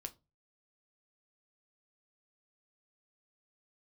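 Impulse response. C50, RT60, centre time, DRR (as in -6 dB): 20.5 dB, 0.25 s, 4 ms, 6.5 dB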